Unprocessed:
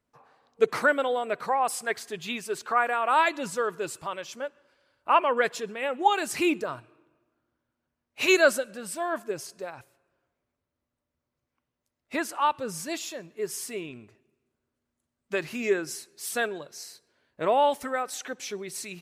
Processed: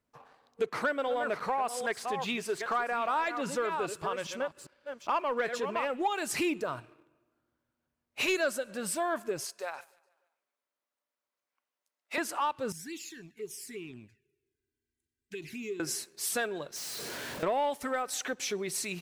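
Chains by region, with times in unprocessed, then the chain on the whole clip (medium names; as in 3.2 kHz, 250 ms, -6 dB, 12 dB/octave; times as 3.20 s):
0.66–5.90 s: chunks repeated in reverse 401 ms, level -10.5 dB + treble shelf 6.2 kHz -7.5 dB
9.45–12.18 s: high-pass 670 Hz + feedback delay 146 ms, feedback 54%, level -22.5 dB
12.72–15.80 s: Chebyshev band-stop 440–1500 Hz, order 5 + compression 2:1, threshold -48 dBFS + touch-sensitive flanger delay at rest 2.6 ms, full sweep at -39.5 dBFS
16.76–17.43 s: one-bit comparator + high-pass 100 Hz
whole clip: compression 2.5:1, threshold -34 dBFS; waveshaping leveller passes 1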